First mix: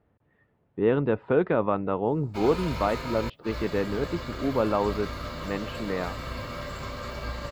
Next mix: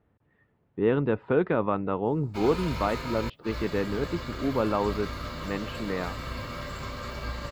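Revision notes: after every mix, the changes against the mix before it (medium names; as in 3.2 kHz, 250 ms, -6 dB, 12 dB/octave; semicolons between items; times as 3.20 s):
master: add peaking EQ 620 Hz -3 dB 0.83 oct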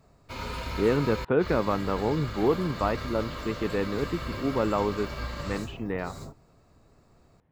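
background: entry -2.05 s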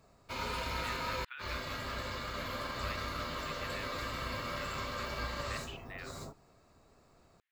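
speech: add Bessel high-pass 2.6 kHz, order 6; master: add bass shelf 320 Hz -7 dB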